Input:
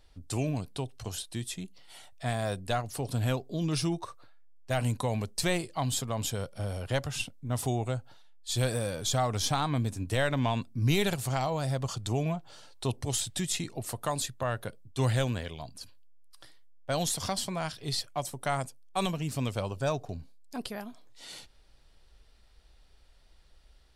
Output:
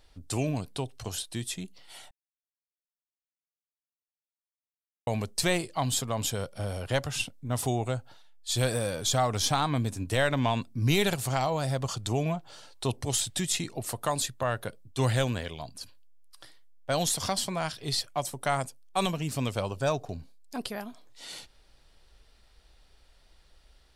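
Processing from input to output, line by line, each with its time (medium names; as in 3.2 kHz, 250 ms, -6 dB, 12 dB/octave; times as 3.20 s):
2.11–5.07 s: mute
whole clip: bass shelf 220 Hz -3.5 dB; trim +3 dB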